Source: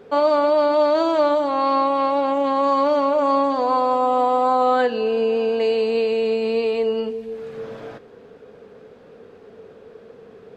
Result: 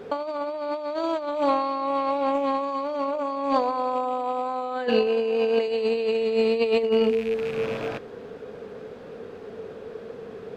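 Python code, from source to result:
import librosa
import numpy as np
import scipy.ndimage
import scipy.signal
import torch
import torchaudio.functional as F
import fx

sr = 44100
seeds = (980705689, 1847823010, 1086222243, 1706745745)

y = fx.rattle_buzz(x, sr, strikes_db=-42.0, level_db=-31.0)
y = fx.highpass(y, sr, hz=170.0, slope=6, at=(5.07, 5.68))
y = fx.over_compress(y, sr, threshold_db=-23.0, ratio=-0.5)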